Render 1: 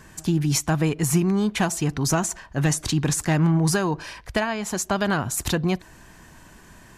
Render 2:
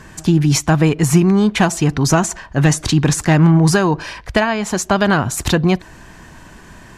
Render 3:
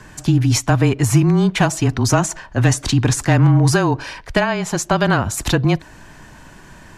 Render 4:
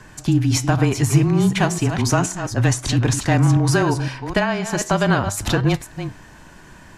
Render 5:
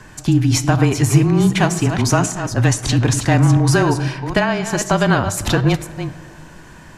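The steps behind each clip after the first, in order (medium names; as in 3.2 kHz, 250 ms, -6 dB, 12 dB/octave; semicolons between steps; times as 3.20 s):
treble shelf 9.2 kHz -11.5 dB; trim +8.5 dB
frequency shift -24 Hz; trim -1.5 dB
chunks repeated in reverse 255 ms, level -9 dB; flange 0.35 Hz, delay 7.7 ms, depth 8.5 ms, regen +84%; trim +2 dB
algorithmic reverb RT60 2.7 s, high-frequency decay 0.3×, pre-delay 20 ms, DRR 17 dB; trim +2.5 dB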